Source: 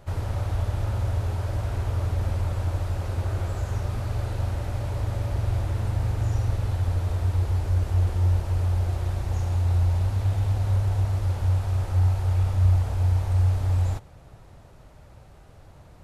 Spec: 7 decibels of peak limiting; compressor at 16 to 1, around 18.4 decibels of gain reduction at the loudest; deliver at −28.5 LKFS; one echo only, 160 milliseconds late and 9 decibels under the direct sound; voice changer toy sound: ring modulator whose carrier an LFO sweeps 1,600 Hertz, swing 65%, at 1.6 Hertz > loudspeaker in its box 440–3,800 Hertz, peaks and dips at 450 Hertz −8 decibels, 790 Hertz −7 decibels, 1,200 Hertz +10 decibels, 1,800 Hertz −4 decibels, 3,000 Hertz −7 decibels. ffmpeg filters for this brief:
ffmpeg -i in.wav -af "acompressor=threshold=-35dB:ratio=16,alimiter=level_in=9dB:limit=-24dB:level=0:latency=1,volume=-9dB,aecho=1:1:160:0.355,aeval=exprs='val(0)*sin(2*PI*1600*n/s+1600*0.65/1.6*sin(2*PI*1.6*n/s))':channel_layout=same,highpass=440,equalizer=frequency=450:width_type=q:width=4:gain=-8,equalizer=frequency=790:width_type=q:width=4:gain=-7,equalizer=frequency=1200:width_type=q:width=4:gain=10,equalizer=frequency=1800:width_type=q:width=4:gain=-4,equalizer=frequency=3000:width_type=q:width=4:gain=-7,lowpass=frequency=3800:width=0.5412,lowpass=frequency=3800:width=1.3066,volume=12dB" out.wav

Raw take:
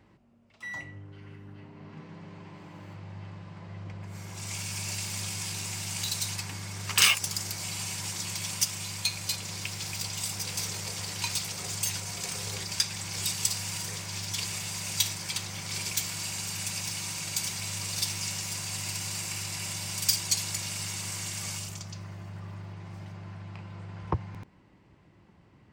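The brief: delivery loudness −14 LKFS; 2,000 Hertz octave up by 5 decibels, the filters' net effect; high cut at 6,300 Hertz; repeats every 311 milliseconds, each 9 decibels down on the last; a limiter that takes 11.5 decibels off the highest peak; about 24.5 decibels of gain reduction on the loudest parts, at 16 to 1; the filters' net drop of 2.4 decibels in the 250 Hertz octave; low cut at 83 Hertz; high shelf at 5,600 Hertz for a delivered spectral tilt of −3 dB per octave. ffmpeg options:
ffmpeg -i in.wav -af "highpass=83,lowpass=6300,equalizer=frequency=250:width_type=o:gain=-4,equalizer=frequency=2000:width_type=o:gain=7.5,highshelf=frequency=5600:gain=-7,acompressor=threshold=-40dB:ratio=16,alimiter=level_in=11.5dB:limit=-24dB:level=0:latency=1,volume=-11.5dB,aecho=1:1:311|622|933|1244:0.355|0.124|0.0435|0.0152,volume=29.5dB" out.wav

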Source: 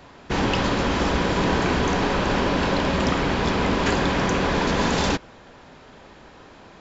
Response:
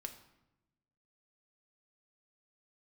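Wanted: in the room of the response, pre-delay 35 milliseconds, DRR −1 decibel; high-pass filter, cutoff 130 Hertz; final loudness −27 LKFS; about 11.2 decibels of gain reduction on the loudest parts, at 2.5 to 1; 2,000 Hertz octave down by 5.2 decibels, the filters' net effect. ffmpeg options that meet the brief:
-filter_complex "[0:a]highpass=130,equalizer=frequency=2000:width_type=o:gain=-7,acompressor=threshold=-37dB:ratio=2.5,asplit=2[link_01][link_02];[1:a]atrim=start_sample=2205,adelay=35[link_03];[link_02][link_03]afir=irnorm=-1:irlink=0,volume=4dB[link_04];[link_01][link_04]amix=inputs=2:normalize=0,volume=4.5dB"

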